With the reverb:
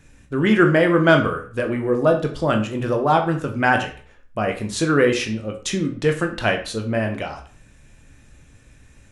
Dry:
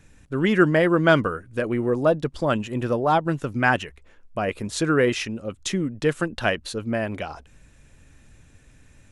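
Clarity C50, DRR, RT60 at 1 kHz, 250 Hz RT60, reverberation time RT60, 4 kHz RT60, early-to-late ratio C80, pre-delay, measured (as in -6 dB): 10.0 dB, 3.5 dB, 0.45 s, 0.45 s, 0.45 s, 0.40 s, 14.0 dB, 15 ms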